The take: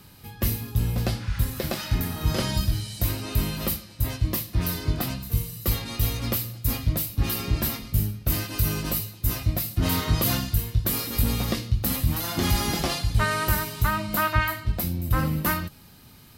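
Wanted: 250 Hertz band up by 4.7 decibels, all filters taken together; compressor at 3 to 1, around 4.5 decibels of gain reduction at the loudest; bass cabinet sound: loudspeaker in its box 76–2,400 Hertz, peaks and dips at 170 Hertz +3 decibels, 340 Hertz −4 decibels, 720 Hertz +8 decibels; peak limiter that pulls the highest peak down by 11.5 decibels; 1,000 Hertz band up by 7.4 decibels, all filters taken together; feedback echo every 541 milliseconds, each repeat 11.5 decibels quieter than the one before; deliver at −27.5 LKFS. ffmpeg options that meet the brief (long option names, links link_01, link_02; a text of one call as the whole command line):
ffmpeg -i in.wav -af "equalizer=frequency=250:width_type=o:gain=5.5,equalizer=frequency=1000:width_type=o:gain=7,acompressor=threshold=-22dB:ratio=3,alimiter=limit=-21.5dB:level=0:latency=1,highpass=frequency=76:width=0.5412,highpass=frequency=76:width=1.3066,equalizer=frequency=170:width_type=q:width=4:gain=3,equalizer=frequency=340:width_type=q:width=4:gain=-4,equalizer=frequency=720:width_type=q:width=4:gain=8,lowpass=frequency=2400:width=0.5412,lowpass=frequency=2400:width=1.3066,aecho=1:1:541|1082|1623:0.266|0.0718|0.0194,volume=5dB" out.wav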